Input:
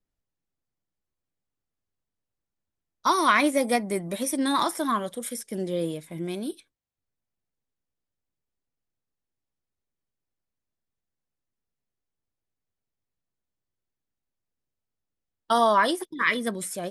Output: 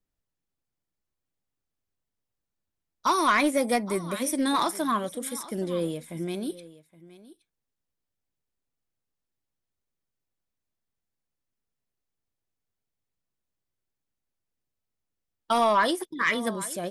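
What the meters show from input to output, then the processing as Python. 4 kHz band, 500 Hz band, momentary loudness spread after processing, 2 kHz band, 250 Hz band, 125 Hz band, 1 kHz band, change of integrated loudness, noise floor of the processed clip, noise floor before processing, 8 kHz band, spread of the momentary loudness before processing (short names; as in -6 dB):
-1.0 dB, -1.0 dB, 12 LU, -1.5 dB, -0.5 dB, 0.0 dB, -1.5 dB, -1.0 dB, -85 dBFS, under -85 dBFS, -0.5 dB, 13 LU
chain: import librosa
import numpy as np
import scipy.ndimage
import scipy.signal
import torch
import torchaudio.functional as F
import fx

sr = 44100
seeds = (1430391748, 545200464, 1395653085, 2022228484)

y = x + 10.0 ** (-19.0 / 20.0) * np.pad(x, (int(820 * sr / 1000.0), 0))[:len(x)]
y = 10.0 ** (-13.5 / 20.0) * np.tanh(y / 10.0 ** (-13.5 / 20.0))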